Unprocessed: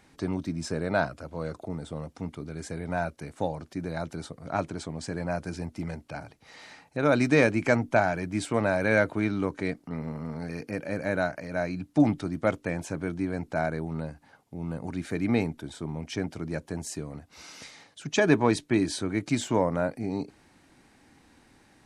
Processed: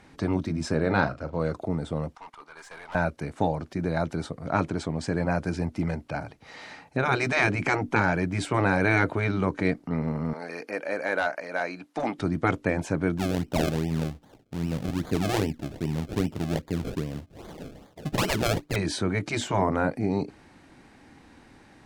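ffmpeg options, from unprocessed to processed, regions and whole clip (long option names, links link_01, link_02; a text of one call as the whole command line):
ffmpeg -i in.wav -filter_complex "[0:a]asettb=1/sr,asplit=3[link_01][link_02][link_03];[link_01]atrim=end=0.754[link_04];[link_02]atrim=start=0.75:end=1.4,asetpts=PTS-STARTPTS,afade=type=in:duration=0.004:curve=qsin,afade=type=out:start_time=0.646:duration=0.004:curve=qsin,lowpass=7100,agate=range=-7dB:threshold=-46dB:ratio=16:release=100:detection=peak,asplit=2[link_05][link_06];[link_06]adelay=40,volume=-11.5dB[link_07];[link_05][link_07]amix=inputs=2:normalize=0,atrim=end_sample=28665[link_08];[link_03]atrim=start=1.396[link_09];[link_04][link_08]acrossfade=duration=0.004:curve1=hsin:curve2=qsin[link_10];[link_10][link_09]acrossfade=duration=0.004:curve1=qsin:curve2=hsin,asettb=1/sr,asplit=3[link_11][link_12][link_13];[link_11]atrim=end=2.154[link_14];[link_12]atrim=start=2.15:end=2.95,asetpts=PTS-STARTPTS,afade=type=in:duration=0.004:curve=qsin,afade=type=out:start_time=0.796:duration=0.004:curve=qsin,agate=range=-6dB:threshold=-38dB:ratio=16:release=100:detection=peak,highpass=frequency=990:width_type=q:width=2.9,aeval=exprs='(tanh(158*val(0)+0.2)-tanh(0.2))/158':channel_layout=same[link_15];[link_13]atrim=start=2.946[link_16];[link_14][link_15]acrossfade=duration=0.004:curve1=hsin:curve2=qsin[link_17];[link_17][link_16]acrossfade=duration=0.004:curve1=qsin:curve2=hsin,asettb=1/sr,asplit=3[link_18][link_19][link_20];[link_18]atrim=end=10.334[link_21];[link_19]atrim=start=10.33:end=12.19,asetpts=PTS-STARTPTS,afade=type=in:duration=0.004:curve=qsin,afade=type=out:start_time=1.856:duration=0.004:curve=qsin,highpass=490,asoftclip=type=hard:threshold=-21.5dB[link_22];[link_20]atrim=start=12.186[link_23];[link_21][link_22]acrossfade=duration=0.004:curve1=hsin:curve2=qsin[link_24];[link_24][link_23]acrossfade=duration=0.004:curve1=qsin:curve2=hsin,asettb=1/sr,asplit=3[link_25][link_26][link_27];[link_25]atrim=end=13.184[link_28];[link_26]atrim=start=13.18:end=18.76,asetpts=PTS-STARTPTS,afade=type=in:duration=0.004:curve=qsin,afade=type=out:start_time=5.576:duration=0.004:curve=qsin,acrusher=samples=32:mix=1:aa=0.000001:lfo=1:lforange=32:lforate=2.5,equalizer=frequency=1300:width_type=o:width=2:gain=-7.5[link_29];[link_27]atrim=start=18.756[link_30];[link_28][link_29]acrossfade=duration=0.004:curve1=hsin:curve2=qsin[link_31];[link_31][link_30]acrossfade=duration=0.004:curve1=qsin:curve2=hsin,afftfilt=real='re*lt(hypot(re,im),0.282)':imag='im*lt(hypot(re,im),0.282)':win_size=1024:overlap=0.75,aemphasis=mode=reproduction:type=cd,volume=6dB" out.wav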